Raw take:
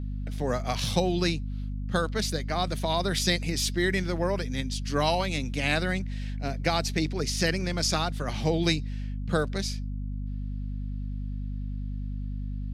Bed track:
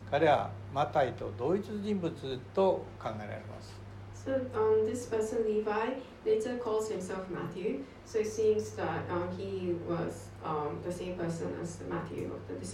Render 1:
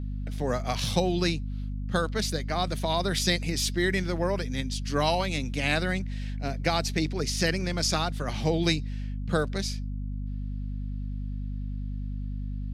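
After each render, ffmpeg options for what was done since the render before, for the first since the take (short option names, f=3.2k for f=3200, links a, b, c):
-af anull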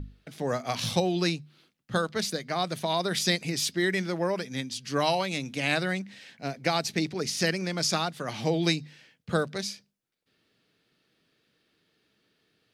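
-af "bandreject=f=50:t=h:w=6,bandreject=f=100:t=h:w=6,bandreject=f=150:t=h:w=6,bandreject=f=200:t=h:w=6,bandreject=f=250:t=h:w=6"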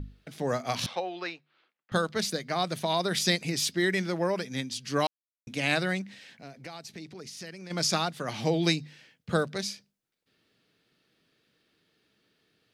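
-filter_complex "[0:a]asettb=1/sr,asplit=3[a][b][c];[a]atrim=end=0.864[d];[b]atrim=start=0.86:end=1.92,asetpts=PTS-STARTPTS,afade=t=in:d=0.004:c=qsin,afade=t=out:st=1.056:d=0.004:c=qsin,highpass=670,lowpass=2.2k[e];[c]atrim=start=1.916[f];[d][e]acrossfade=d=0.004:c1=hsin:c2=qsin[g];[g][f]acrossfade=d=0.004:c1=qsin:c2=hsin,asplit=3[h][i][j];[h]afade=t=out:st=6.14:d=0.02[k];[i]acompressor=threshold=-46dB:ratio=2.5:attack=3.2:release=140:knee=1:detection=peak,afade=t=in:st=6.14:d=0.02,afade=t=out:st=7.7:d=0.02[l];[j]afade=t=in:st=7.7:d=0.02[m];[k][l][m]amix=inputs=3:normalize=0,asplit=3[n][o][p];[n]atrim=end=5.07,asetpts=PTS-STARTPTS,afade=t=out:st=5.066:d=0.004:c=hsin[q];[o]atrim=start=5.07:end=5.47,asetpts=PTS-STARTPTS,volume=0[r];[p]atrim=start=5.47,asetpts=PTS-STARTPTS,afade=t=in:d=0.004:c=hsin[s];[q][r][s]concat=n=3:v=0:a=1"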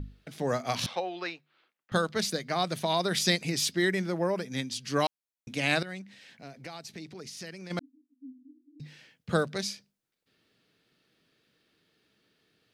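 -filter_complex "[0:a]asettb=1/sr,asplit=3[a][b][c];[a]atrim=end=3.904[d];[b]atrim=start=3.9:end=4.52,asetpts=PTS-STARTPTS,afade=t=in:d=0.004:c=qsin,afade=t=out:st=0.616:d=0.004:c=qsin,equalizer=f=3.7k:w=0.5:g=-6[e];[c]atrim=start=4.516[f];[d][e]acrossfade=d=0.004:c1=hsin:c2=qsin[g];[g][f]acrossfade=d=0.004:c1=qsin:c2=hsin,asettb=1/sr,asplit=3[h][i][j];[h]atrim=end=7.794[k];[i]atrim=start=7.79:end=8.8,asetpts=PTS-STARTPTS,afade=t=in:d=0.004:c=qsin,afade=t=out:st=1.006:d=0.004:c=qsin,asuperpass=centerf=270:order=12:qfactor=5.7[l];[j]atrim=start=8.796[m];[k][l]acrossfade=d=0.004:c1=hsin:c2=qsin[n];[n][m]acrossfade=d=0.004:c1=qsin:c2=hsin,asplit=2[o][p];[o]atrim=end=5.83,asetpts=PTS-STARTPTS,afade=t=out:st=5.826:d=0.004:c=hsin:silence=0.188365[q];[p]atrim=start=5.83,asetpts=PTS-STARTPTS,afade=t=in:d=0.64:silence=0.188365[r];[q][r]concat=n=2:v=0:a=1"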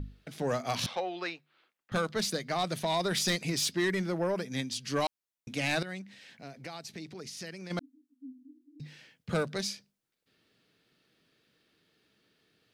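-af "asoftclip=type=tanh:threshold=-21.5dB"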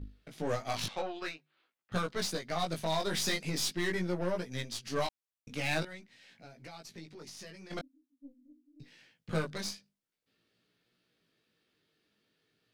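-af "aeval=exprs='0.0841*(cos(1*acos(clip(val(0)/0.0841,-1,1)))-cos(1*PI/2))+0.00944*(cos(4*acos(clip(val(0)/0.0841,-1,1)))-cos(4*PI/2))+0.00335*(cos(7*acos(clip(val(0)/0.0841,-1,1)))-cos(7*PI/2))+0.00106*(cos(8*acos(clip(val(0)/0.0841,-1,1)))-cos(8*PI/2))':c=same,flanger=delay=16.5:depth=3.3:speed=0.46"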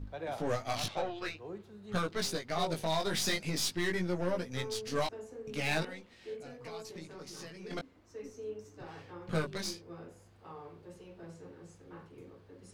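-filter_complex "[1:a]volume=-14dB[a];[0:a][a]amix=inputs=2:normalize=0"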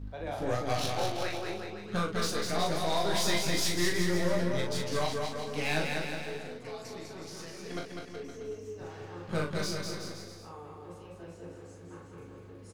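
-filter_complex "[0:a]asplit=2[a][b];[b]adelay=40,volume=-4.5dB[c];[a][c]amix=inputs=2:normalize=0,aecho=1:1:200|370|514.5|637.3|741.7:0.631|0.398|0.251|0.158|0.1"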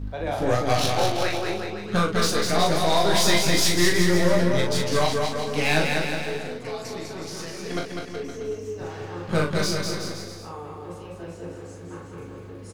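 -af "volume=9dB"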